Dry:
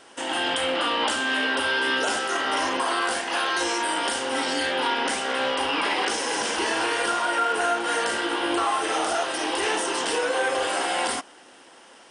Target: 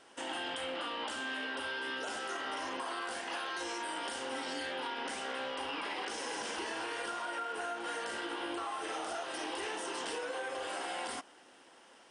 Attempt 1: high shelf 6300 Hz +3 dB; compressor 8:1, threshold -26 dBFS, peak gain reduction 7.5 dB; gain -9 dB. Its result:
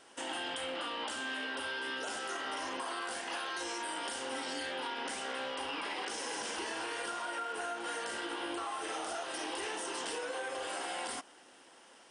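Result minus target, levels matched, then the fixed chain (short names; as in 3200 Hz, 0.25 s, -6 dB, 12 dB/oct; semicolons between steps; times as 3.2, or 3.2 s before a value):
8000 Hz band +3.0 dB
high shelf 6300 Hz -3 dB; compressor 8:1, threshold -26 dBFS, peak gain reduction 7 dB; gain -9 dB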